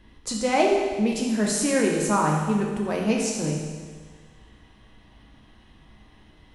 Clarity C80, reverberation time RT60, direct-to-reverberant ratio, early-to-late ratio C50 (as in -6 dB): 4.0 dB, 1.6 s, -1.5 dB, 2.0 dB